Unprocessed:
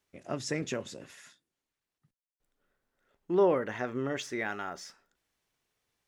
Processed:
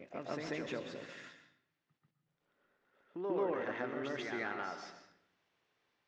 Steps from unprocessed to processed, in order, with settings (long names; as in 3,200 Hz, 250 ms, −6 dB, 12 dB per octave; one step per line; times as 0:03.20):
stylus tracing distortion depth 0.084 ms
Gaussian smoothing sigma 1.9 samples
downward compressor 2 to 1, threshold −45 dBFS, peak gain reduction 13.5 dB
high-pass filter 330 Hz 6 dB per octave
backwards echo 139 ms −4 dB
on a send at −8.5 dB: convolution reverb RT60 0.70 s, pre-delay 113 ms
on the sum: level +3.5 dB